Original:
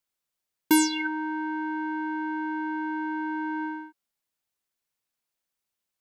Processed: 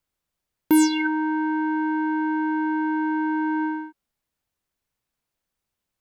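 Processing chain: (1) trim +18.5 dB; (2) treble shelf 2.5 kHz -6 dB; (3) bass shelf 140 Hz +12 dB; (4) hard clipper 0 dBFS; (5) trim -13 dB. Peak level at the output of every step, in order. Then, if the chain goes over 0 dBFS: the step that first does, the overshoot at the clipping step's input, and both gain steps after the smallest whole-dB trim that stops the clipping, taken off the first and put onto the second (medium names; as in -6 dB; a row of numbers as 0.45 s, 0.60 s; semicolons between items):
+7.0 dBFS, +3.5 dBFS, +8.5 dBFS, 0.0 dBFS, -13.0 dBFS; step 1, 8.5 dB; step 1 +9.5 dB, step 5 -4 dB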